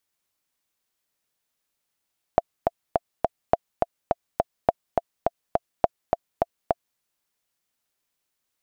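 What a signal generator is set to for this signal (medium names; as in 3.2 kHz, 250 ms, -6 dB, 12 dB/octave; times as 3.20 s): metronome 208 bpm, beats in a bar 4, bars 4, 683 Hz, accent 3.5 dB -3 dBFS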